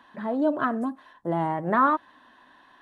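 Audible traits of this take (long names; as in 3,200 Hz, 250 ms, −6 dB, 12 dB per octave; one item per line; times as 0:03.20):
background noise floor −57 dBFS
spectral slope −2.5 dB per octave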